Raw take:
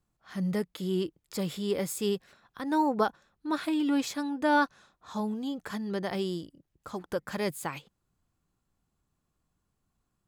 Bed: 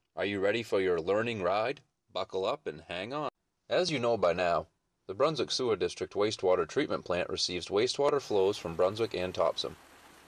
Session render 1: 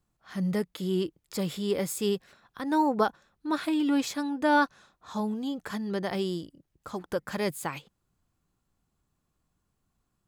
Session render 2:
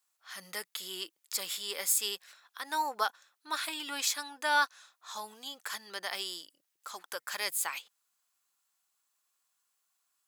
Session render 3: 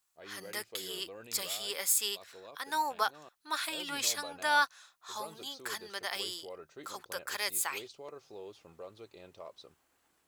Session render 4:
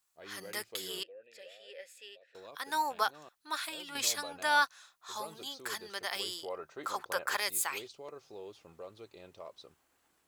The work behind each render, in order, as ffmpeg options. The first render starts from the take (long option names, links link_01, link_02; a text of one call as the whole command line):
ffmpeg -i in.wav -af "volume=1.5dB" out.wav
ffmpeg -i in.wav -af "highpass=1100,highshelf=frequency=4000:gain=9.5" out.wav
ffmpeg -i in.wav -i bed.wav -filter_complex "[1:a]volume=-19.5dB[link_01];[0:a][link_01]amix=inputs=2:normalize=0" out.wav
ffmpeg -i in.wav -filter_complex "[0:a]asettb=1/sr,asplit=3[link_01][link_02][link_03];[link_01]atrim=end=1.034[link_04];[link_02]atrim=start=1.03:end=2.35,asetpts=PTS-STARTPTS,afade=type=in:duration=0.004:curve=qsin,afade=type=out:start_time=1.316:duration=0.004:curve=qsin,asplit=3[link_05][link_06][link_07];[link_05]bandpass=frequency=530:width_type=q:width=8,volume=0dB[link_08];[link_06]bandpass=frequency=1840:width_type=q:width=8,volume=-6dB[link_09];[link_07]bandpass=frequency=2480:width_type=q:width=8,volume=-9dB[link_10];[link_08][link_09][link_10]amix=inputs=3:normalize=0[link_11];[link_03]atrim=start=2.346[link_12];[link_04][link_11]acrossfade=duration=0.004:curve1=hsin:curve2=qsin[link_13];[link_13][link_12]acrossfade=duration=0.004:curve1=qsin:curve2=hsin,asettb=1/sr,asplit=3[link_14][link_15][link_16];[link_14]atrim=end=6.434[link_17];[link_15]atrim=start=6.43:end=7.4,asetpts=PTS-STARTPTS,afade=type=in:duration=0.004:curve=qsin,afade=type=out:start_time=0.966:duration=0.004:curve=qsin,equalizer=frequency=970:width_type=o:width=2.2:gain=9[link_18];[link_16]atrim=start=7.396[link_19];[link_17][link_18]acrossfade=duration=0.004:curve1=hsin:curve2=qsin[link_20];[link_20][link_19]acrossfade=duration=0.004:curve1=qsin:curve2=hsin,asplit=2[link_21][link_22];[link_21]atrim=end=3.95,asetpts=PTS-STARTPTS,afade=type=out:start_time=3.36:duration=0.59:silence=0.398107[link_23];[link_22]atrim=start=3.95,asetpts=PTS-STARTPTS,afade=type=in:duration=0.004:curve=hsin:silence=0.398107[link_24];[link_23][link_24]concat=n=2:v=0:a=1" out.wav